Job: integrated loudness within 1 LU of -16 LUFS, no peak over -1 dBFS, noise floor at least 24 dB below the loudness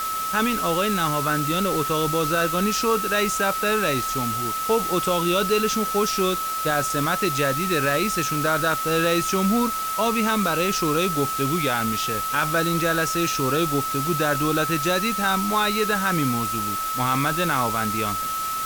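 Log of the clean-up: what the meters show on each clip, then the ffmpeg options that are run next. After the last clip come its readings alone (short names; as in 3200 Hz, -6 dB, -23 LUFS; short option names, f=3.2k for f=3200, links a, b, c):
steady tone 1300 Hz; tone level -25 dBFS; noise floor -27 dBFS; noise floor target -46 dBFS; loudness -22.0 LUFS; peak -6.5 dBFS; loudness target -16.0 LUFS
-> -af "bandreject=f=1.3k:w=30"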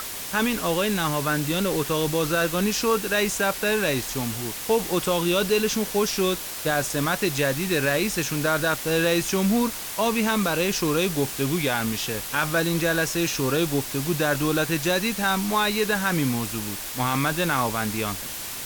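steady tone none; noise floor -34 dBFS; noise floor target -48 dBFS
-> -af "afftdn=nr=14:nf=-34"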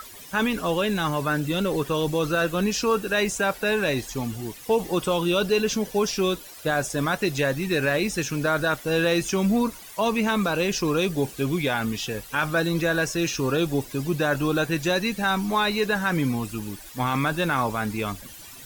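noise floor -43 dBFS; noise floor target -49 dBFS
-> -af "afftdn=nr=6:nf=-43"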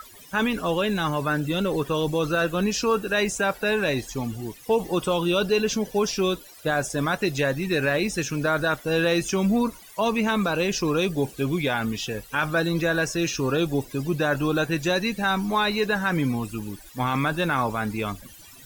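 noise floor -47 dBFS; noise floor target -49 dBFS
-> -af "afftdn=nr=6:nf=-47"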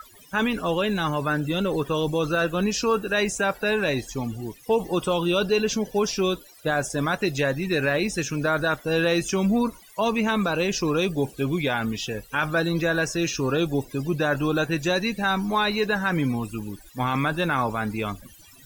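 noise floor -50 dBFS; loudness -24.5 LUFS; peak -10.0 dBFS; loudness target -16.0 LUFS
-> -af "volume=8.5dB"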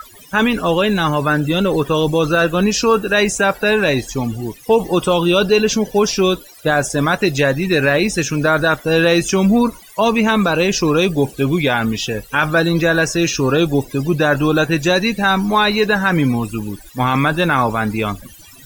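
loudness -16.0 LUFS; peak -1.5 dBFS; noise floor -42 dBFS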